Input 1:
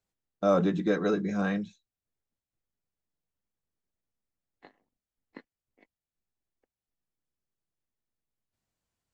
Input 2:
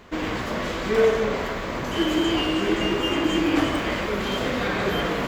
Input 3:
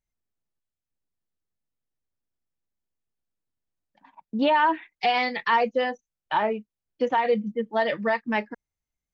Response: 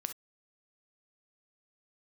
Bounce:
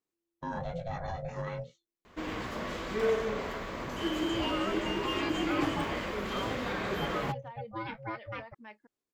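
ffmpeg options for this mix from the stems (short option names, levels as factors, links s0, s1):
-filter_complex "[0:a]flanger=delay=18:depth=3.9:speed=1.2,volume=0.944[s0];[1:a]adelay=2050,volume=0.335[s1];[2:a]acrossover=split=720[s2][s3];[s2]aeval=exprs='val(0)*(1-0.5/2+0.5/2*cos(2*PI*2.2*n/s))':c=same[s4];[s3]aeval=exprs='val(0)*(1-0.5/2-0.5/2*cos(2*PI*2.2*n/s))':c=same[s5];[s4][s5]amix=inputs=2:normalize=0,volume=0.398,asplit=2[s6][s7];[s7]volume=0.2[s8];[s0][s6]amix=inputs=2:normalize=0,aeval=exprs='val(0)*sin(2*PI*340*n/s)':c=same,alimiter=level_in=1.5:limit=0.0631:level=0:latency=1:release=20,volume=0.668,volume=1[s9];[s8]aecho=0:1:324:1[s10];[s1][s9][s10]amix=inputs=3:normalize=0,equalizer=f=1100:w=6.3:g=2.5"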